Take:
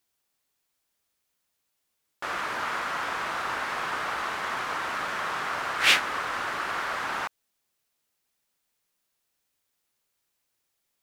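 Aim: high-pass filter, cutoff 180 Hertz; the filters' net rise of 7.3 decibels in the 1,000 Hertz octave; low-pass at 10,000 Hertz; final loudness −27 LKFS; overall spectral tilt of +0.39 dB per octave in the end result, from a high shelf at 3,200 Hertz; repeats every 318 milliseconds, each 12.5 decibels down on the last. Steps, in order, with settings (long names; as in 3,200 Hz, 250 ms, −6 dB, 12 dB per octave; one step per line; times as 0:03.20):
high-pass filter 180 Hz
low-pass filter 10,000 Hz
parametric band 1,000 Hz +8.5 dB
high-shelf EQ 3,200 Hz +5 dB
repeating echo 318 ms, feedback 24%, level −12.5 dB
level −4 dB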